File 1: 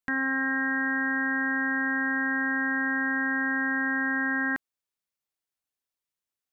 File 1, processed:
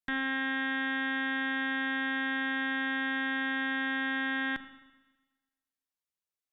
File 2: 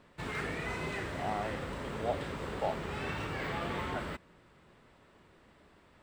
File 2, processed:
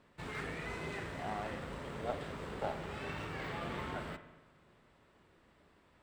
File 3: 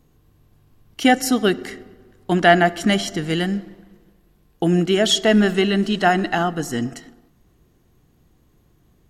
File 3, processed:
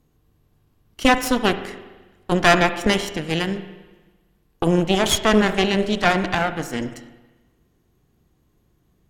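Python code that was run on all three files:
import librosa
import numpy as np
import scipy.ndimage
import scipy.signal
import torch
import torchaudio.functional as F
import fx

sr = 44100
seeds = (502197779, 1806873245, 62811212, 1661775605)

y = fx.cheby_harmonics(x, sr, harmonics=(3, 4, 7, 8), levels_db=(-22, -11, -40, -23), full_scale_db=-1.0)
y = fx.rev_spring(y, sr, rt60_s=1.2, pass_ms=(37, 42), chirp_ms=70, drr_db=10.5)
y = y * 10.0 ** (-2.0 / 20.0)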